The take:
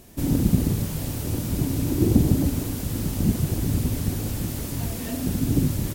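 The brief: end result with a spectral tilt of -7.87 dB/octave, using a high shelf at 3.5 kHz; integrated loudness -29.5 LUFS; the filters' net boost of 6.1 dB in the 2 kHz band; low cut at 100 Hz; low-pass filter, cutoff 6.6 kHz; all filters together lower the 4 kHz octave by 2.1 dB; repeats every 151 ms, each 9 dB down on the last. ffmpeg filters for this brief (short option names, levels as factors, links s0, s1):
-af "highpass=100,lowpass=6600,equalizer=f=2000:t=o:g=8.5,highshelf=f=3500:g=3,equalizer=f=4000:t=o:g=-7,aecho=1:1:151|302|453|604:0.355|0.124|0.0435|0.0152,volume=0.631"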